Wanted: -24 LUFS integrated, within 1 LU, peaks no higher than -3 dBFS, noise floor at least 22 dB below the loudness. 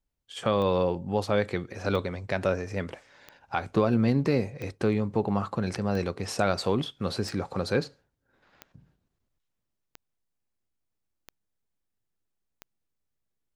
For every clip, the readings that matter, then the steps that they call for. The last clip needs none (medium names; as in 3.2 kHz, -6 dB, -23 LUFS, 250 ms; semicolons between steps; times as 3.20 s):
clicks found 10; loudness -28.5 LUFS; peak level -10.0 dBFS; loudness target -24.0 LUFS
-> de-click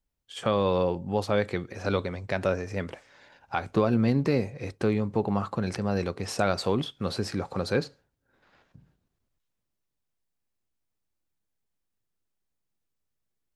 clicks found 0; loudness -28.5 LUFS; peak level -10.0 dBFS; loudness target -24.0 LUFS
-> trim +4.5 dB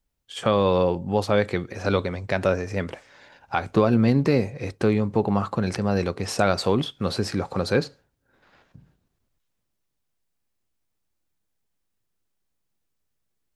loudness -24.0 LUFS; peak level -5.5 dBFS; noise floor -76 dBFS